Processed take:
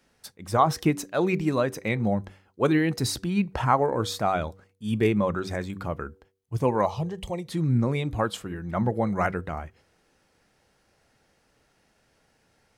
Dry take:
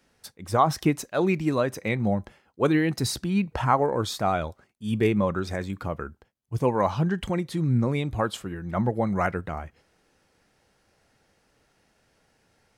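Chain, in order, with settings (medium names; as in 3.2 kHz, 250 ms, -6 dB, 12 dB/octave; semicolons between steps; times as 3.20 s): de-hum 95.86 Hz, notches 5; 6.85–7.48 s: static phaser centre 620 Hz, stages 4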